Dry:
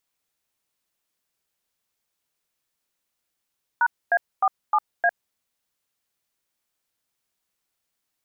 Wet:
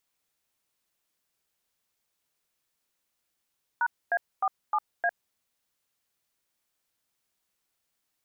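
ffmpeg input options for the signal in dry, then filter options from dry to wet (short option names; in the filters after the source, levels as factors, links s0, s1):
-f lavfi -i "aevalsrc='0.119*clip(min(mod(t,0.307),0.055-mod(t,0.307))/0.002,0,1)*(eq(floor(t/0.307),0)*(sin(2*PI*941*mod(t,0.307))+sin(2*PI*1477*mod(t,0.307)))+eq(floor(t/0.307),1)*(sin(2*PI*697*mod(t,0.307))+sin(2*PI*1633*mod(t,0.307)))+eq(floor(t/0.307),2)*(sin(2*PI*770*mod(t,0.307))+sin(2*PI*1209*mod(t,0.307)))+eq(floor(t/0.307),3)*(sin(2*PI*852*mod(t,0.307))+sin(2*PI*1209*mod(t,0.307)))+eq(floor(t/0.307),4)*(sin(2*PI*697*mod(t,0.307))+sin(2*PI*1633*mod(t,0.307))))':d=1.535:s=44100"
-af "alimiter=limit=0.112:level=0:latency=1:release=17"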